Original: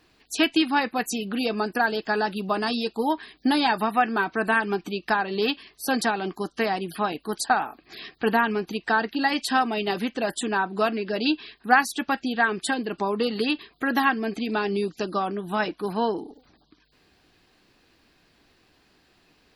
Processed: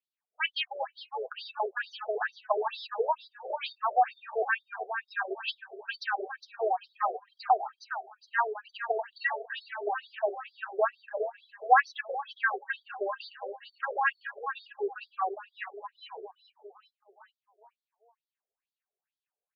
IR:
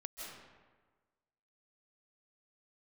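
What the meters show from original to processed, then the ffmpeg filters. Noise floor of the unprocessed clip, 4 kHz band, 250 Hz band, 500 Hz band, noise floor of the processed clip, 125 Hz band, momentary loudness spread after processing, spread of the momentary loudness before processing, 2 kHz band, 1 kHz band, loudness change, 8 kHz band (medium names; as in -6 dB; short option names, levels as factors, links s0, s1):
-63 dBFS, -10.5 dB, under -25 dB, -6.5 dB, under -85 dBFS, under -40 dB, 12 LU, 6 LU, -7.0 dB, -5.0 dB, -7.0 dB, under -25 dB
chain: -filter_complex "[0:a]afftdn=nr=27:nf=-33,bass=f=250:g=-9,treble=f=4000:g=-13,asplit=2[s0][s1];[s1]aecho=0:1:409|818|1227|1636|2045:0.335|0.151|0.0678|0.0305|0.0137[s2];[s0][s2]amix=inputs=2:normalize=0,afftfilt=real='re*between(b*sr/1024,500*pow(4700/500,0.5+0.5*sin(2*PI*2.2*pts/sr))/1.41,500*pow(4700/500,0.5+0.5*sin(2*PI*2.2*pts/sr))*1.41)':imag='im*between(b*sr/1024,500*pow(4700/500,0.5+0.5*sin(2*PI*2.2*pts/sr))/1.41,500*pow(4700/500,0.5+0.5*sin(2*PI*2.2*pts/sr))*1.41)':win_size=1024:overlap=0.75"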